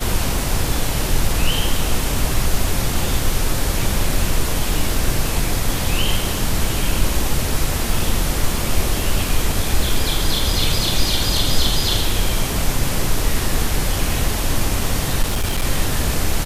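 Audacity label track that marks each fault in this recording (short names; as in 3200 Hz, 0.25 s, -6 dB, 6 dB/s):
15.220000	15.650000	clipped -15 dBFS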